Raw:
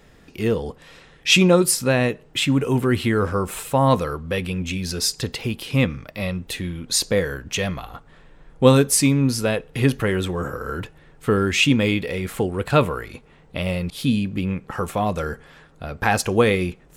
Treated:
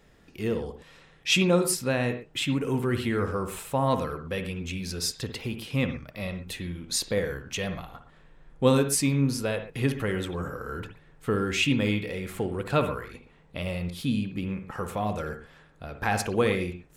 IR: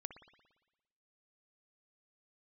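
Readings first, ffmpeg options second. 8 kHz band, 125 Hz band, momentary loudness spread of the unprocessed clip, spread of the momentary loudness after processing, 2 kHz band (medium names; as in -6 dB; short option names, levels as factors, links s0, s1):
-7.5 dB, -7.0 dB, 13 LU, 12 LU, -7.0 dB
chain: -filter_complex "[1:a]atrim=start_sample=2205,afade=t=out:st=0.18:d=0.01,atrim=end_sample=8379[s0];[0:a][s0]afir=irnorm=-1:irlink=0,volume=0.75"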